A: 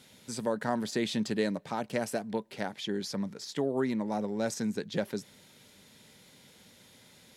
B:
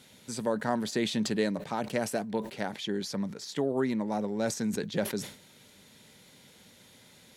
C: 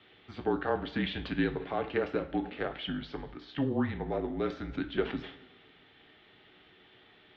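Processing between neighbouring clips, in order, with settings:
notch filter 5,100 Hz, Q 27; level that may fall only so fast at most 120 dB per second; level +1 dB
single-sideband voice off tune −150 Hz 310–3,500 Hz; coupled-rooms reverb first 0.31 s, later 1.5 s, from −16 dB, DRR 5.5 dB

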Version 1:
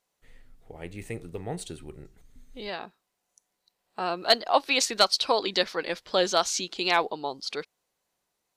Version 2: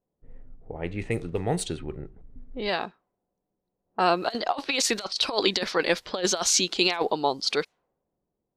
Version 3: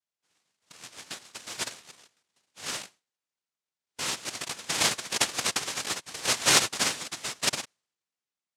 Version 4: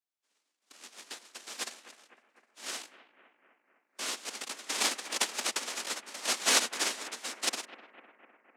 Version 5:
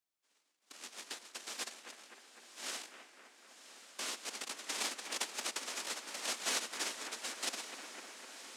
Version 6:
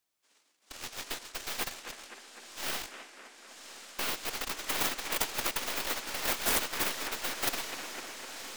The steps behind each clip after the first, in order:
compressor whose output falls as the input rises −27 dBFS, ratio −0.5; low-pass that shuts in the quiet parts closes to 360 Hz, open at −27.5 dBFS; level +4.5 dB
spectral tilt +4.5 dB per octave; cochlear-implant simulation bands 1; level −9 dB
bucket-brigade delay 253 ms, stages 4,096, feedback 64%, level −14 dB; frequency shifter +120 Hz; level −4.5 dB
downward compressor 2 to 1, threshold −44 dBFS, peak gain reduction 13 dB; on a send: feedback delay with all-pass diffusion 1,094 ms, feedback 56%, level −12 dB; on the sum: level +1.5 dB
stylus tracing distortion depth 0.39 ms; level +8 dB

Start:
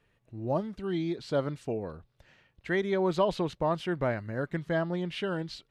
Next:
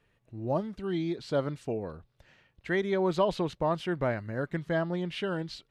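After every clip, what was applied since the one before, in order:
no processing that can be heard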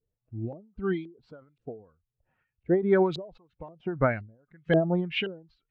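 spectral dynamics exaggerated over time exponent 1.5
auto-filter low-pass saw up 1.9 Hz 400–3,200 Hz
every ending faded ahead of time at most 130 dB per second
level +8.5 dB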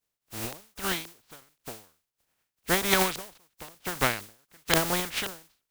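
compressing power law on the bin magnitudes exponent 0.22
level −1 dB

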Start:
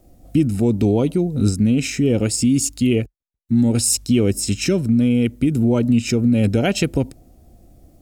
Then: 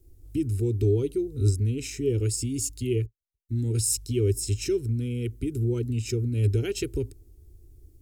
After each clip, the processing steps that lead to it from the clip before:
drawn EQ curve 110 Hz 0 dB, 180 Hz −26 dB, 410 Hz 0 dB, 590 Hz −29 dB, 1,400 Hz −15 dB, 12,000 Hz −4 dB
level −1.5 dB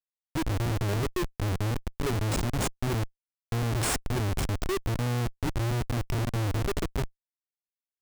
comparator with hysteresis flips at −25 dBFS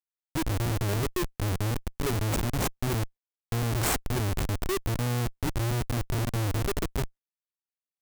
running median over 9 samples
high-shelf EQ 7,300 Hz +7.5 dB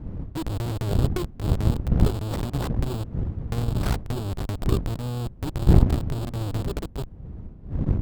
gap after every zero crossing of 0.26 ms
wind on the microphone 110 Hz −26 dBFS
harmonic generator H 4 −10 dB, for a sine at −4.5 dBFS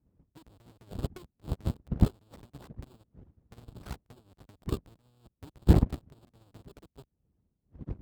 high-pass filter 53 Hz 12 dB per octave
harmonic and percussive parts rebalanced percussive +9 dB
expander for the loud parts 2.5 to 1, over −29 dBFS
level −5.5 dB

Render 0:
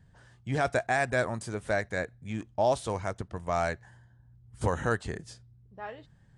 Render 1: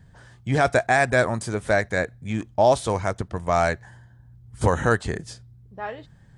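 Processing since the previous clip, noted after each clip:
notch filter 2,800 Hz, Q 23
level +8 dB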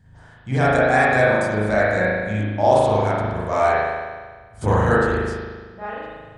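spring reverb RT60 1.5 s, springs 38 ms, chirp 75 ms, DRR −8.5 dB
level −5 dB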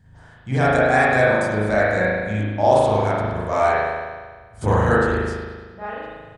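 repeating echo 102 ms, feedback 47%, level −20 dB

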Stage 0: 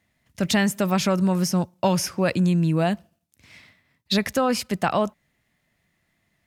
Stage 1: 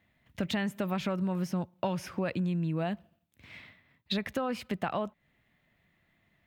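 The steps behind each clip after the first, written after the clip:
flat-topped bell 7,700 Hz −12 dB
downward compressor 3 to 1, threshold −32 dBFS, peak gain reduction 11.5 dB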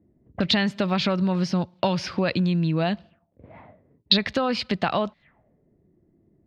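envelope-controlled low-pass 340–4,500 Hz up, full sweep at −36.5 dBFS
level +8 dB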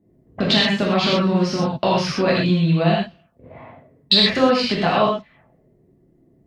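harmonic generator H 4 −36 dB, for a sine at −3.5 dBFS
reverb whose tail is shaped and stops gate 150 ms flat, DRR −5.5 dB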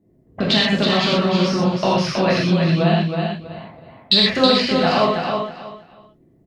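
repeating echo 321 ms, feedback 24%, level −5 dB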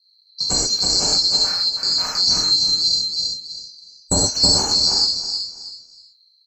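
neighbouring bands swapped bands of 4,000 Hz
amplitude tremolo 0.85 Hz, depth 29%

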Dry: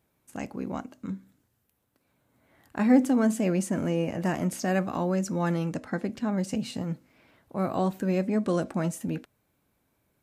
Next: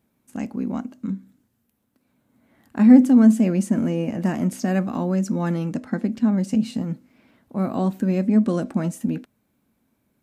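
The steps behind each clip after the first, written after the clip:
parametric band 230 Hz +12 dB 0.6 octaves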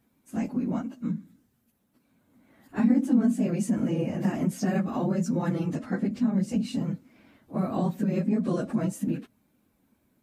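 random phases in long frames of 50 ms
downward compressor 2 to 1, threshold −26 dBFS, peak gain reduction 10.5 dB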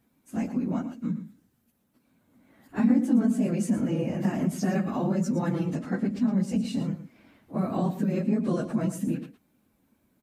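single-tap delay 113 ms −12 dB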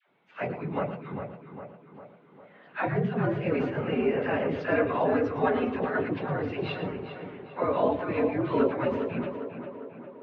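single-sideband voice off tune −94 Hz 400–3,400 Hz
all-pass dispersion lows, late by 82 ms, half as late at 700 Hz
tape delay 403 ms, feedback 61%, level −7.5 dB, low-pass 2,500 Hz
level +8.5 dB

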